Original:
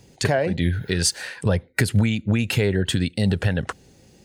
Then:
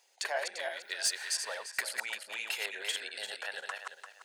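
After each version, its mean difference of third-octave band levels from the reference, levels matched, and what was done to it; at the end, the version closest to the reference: 16.0 dB: backward echo that repeats 172 ms, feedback 48%, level -3 dB; high-pass 700 Hz 24 dB/octave; wavefolder -11 dBFS; trim -9 dB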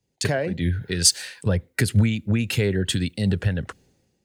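3.5 dB: dynamic bell 820 Hz, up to -6 dB, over -38 dBFS, Q 1.3; word length cut 12-bit, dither triangular; three bands expanded up and down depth 70%; trim -1 dB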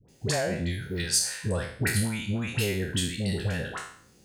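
9.5 dB: spectral sustain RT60 0.56 s; treble shelf 6.9 kHz +8.5 dB; phase dispersion highs, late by 86 ms, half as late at 830 Hz; trim -9 dB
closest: second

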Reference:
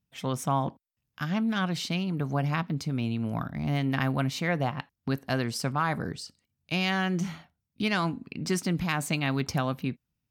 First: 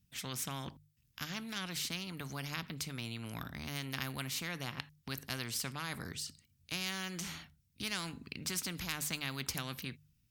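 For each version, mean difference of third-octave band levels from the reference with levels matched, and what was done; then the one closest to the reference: 9.5 dB: amplifier tone stack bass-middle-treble 6-0-2; hum notches 50/100/150 Hz; spectrum-flattening compressor 2:1; trim +14 dB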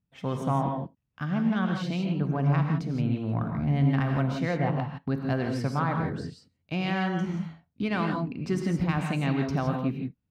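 7.0 dB: low-pass 1.2 kHz 6 dB/octave; Chebyshev shaper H 5 -31 dB, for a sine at -15.5 dBFS; gated-style reverb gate 190 ms rising, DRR 3 dB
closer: second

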